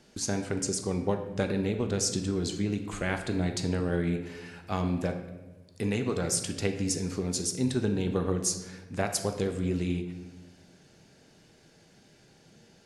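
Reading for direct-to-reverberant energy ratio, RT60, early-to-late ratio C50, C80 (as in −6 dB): 5.5 dB, 1.2 s, 8.5 dB, 10.5 dB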